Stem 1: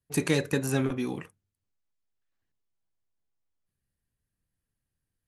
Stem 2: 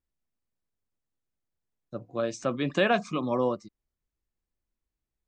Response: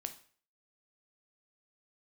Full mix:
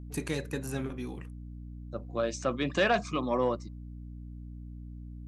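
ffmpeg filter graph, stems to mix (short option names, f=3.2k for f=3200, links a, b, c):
-filter_complex "[0:a]volume=-6dB[a];[1:a]lowshelf=f=430:g=-5,aeval=exprs='val(0)+0.00708*(sin(2*PI*60*n/s)+sin(2*PI*2*60*n/s)/2+sin(2*PI*3*60*n/s)/3+sin(2*PI*4*60*n/s)/4+sin(2*PI*5*60*n/s)/5)':c=same,asoftclip=type=tanh:threshold=-17dB,volume=1dB,asplit=3[b][c][d];[c]volume=-23.5dB[e];[d]apad=whole_len=232834[f];[a][f]sidechaincompress=threshold=-43dB:ratio=8:attack=31:release=117[g];[2:a]atrim=start_sample=2205[h];[e][h]afir=irnorm=-1:irlink=0[i];[g][b][i]amix=inputs=3:normalize=0"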